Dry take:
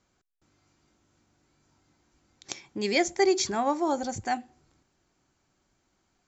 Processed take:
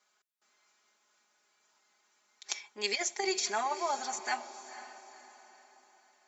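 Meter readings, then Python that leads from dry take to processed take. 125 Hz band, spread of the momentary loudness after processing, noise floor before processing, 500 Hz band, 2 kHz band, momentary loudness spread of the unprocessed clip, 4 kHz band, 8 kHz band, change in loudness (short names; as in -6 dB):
under -20 dB, 17 LU, -74 dBFS, -10.0 dB, -3.0 dB, 14 LU, -1.5 dB, n/a, -6.0 dB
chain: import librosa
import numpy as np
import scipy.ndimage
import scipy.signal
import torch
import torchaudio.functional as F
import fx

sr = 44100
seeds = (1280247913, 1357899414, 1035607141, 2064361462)

p1 = scipy.signal.sosfilt(scipy.signal.butter(2, 810.0, 'highpass', fs=sr, output='sos'), x)
p2 = p1 + 0.97 * np.pad(p1, (int(4.8 * sr / 1000.0), 0))[:len(p1)]
p3 = fx.over_compress(p2, sr, threshold_db=-27.0, ratio=-0.5)
p4 = p3 + fx.echo_diffused(p3, sr, ms=493, feedback_pct=44, wet_db=-13, dry=0)
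y = F.gain(torch.from_numpy(p4), -2.5).numpy()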